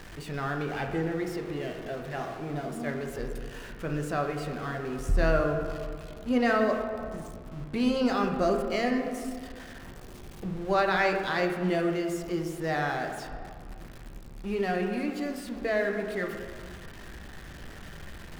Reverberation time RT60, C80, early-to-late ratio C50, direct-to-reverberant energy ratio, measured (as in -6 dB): 1.9 s, 6.5 dB, 5.0 dB, 2.5 dB